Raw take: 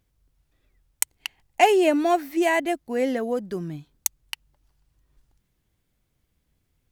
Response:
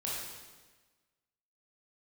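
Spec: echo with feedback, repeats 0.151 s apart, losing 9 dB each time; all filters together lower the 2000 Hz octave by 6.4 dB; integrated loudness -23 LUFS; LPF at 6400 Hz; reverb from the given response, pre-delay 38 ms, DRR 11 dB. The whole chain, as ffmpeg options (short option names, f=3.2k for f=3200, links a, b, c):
-filter_complex "[0:a]lowpass=6.4k,equalizer=f=2k:t=o:g=-7.5,aecho=1:1:151|302|453|604:0.355|0.124|0.0435|0.0152,asplit=2[a][b];[1:a]atrim=start_sample=2205,adelay=38[c];[b][c]afir=irnorm=-1:irlink=0,volume=-14.5dB[d];[a][d]amix=inputs=2:normalize=0,volume=1dB"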